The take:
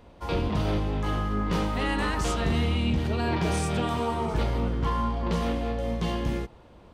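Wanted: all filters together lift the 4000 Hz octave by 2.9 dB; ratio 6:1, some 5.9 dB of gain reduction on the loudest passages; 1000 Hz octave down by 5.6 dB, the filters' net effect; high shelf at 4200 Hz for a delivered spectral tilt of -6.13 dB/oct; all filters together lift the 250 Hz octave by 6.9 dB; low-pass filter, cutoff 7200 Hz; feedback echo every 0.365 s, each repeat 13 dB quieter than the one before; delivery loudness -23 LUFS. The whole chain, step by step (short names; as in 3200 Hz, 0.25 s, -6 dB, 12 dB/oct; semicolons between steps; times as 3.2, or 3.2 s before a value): LPF 7200 Hz; bell 250 Hz +9 dB; bell 1000 Hz -8 dB; bell 4000 Hz +7.5 dB; high shelf 4200 Hz -5 dB; compressor 6:1, threshold -23 dBFS; feedback echo 0.365 s, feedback 22%, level -13 dB; gain +5 dB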